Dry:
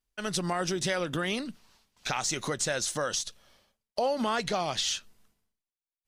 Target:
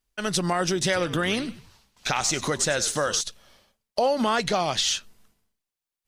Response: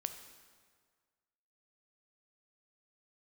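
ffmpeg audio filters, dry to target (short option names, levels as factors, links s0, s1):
-filter_complex "[0:a]asettb=1/sr,asplit=3[s0][s1][s2];[s0]atrim=end=0.834[s3];[s1]atrim=start=0.83:end=3.21,asetpts=PTS-STARTPTS,afade=t=in:d=0.004:c=qsin,afade=t=out:st=2.376:d=0.004:c=qsin,asplit=4[s4][s5][s6][s7];[s5]adelay=97,afreqshift=-67,volume=0.178[s8];[s6]adelay=194,afreqshift=-134,volume=0.0569[s9];[s7]adelay=291,afreqshift=-201,volume=0.0182[s10];[s4][s8][s9][s10]amix=inputs=4:normalize=0,atrim=end_sample=104958[s11];[s2]atrim=start=3.206[s12];[s3][s11]acrossfade=d=0.004:c1=hsin:c2=qsin[s13];[s13][s12]acrossfade=d=0.004:c1=qsin:c2=hsin,volume=1.88"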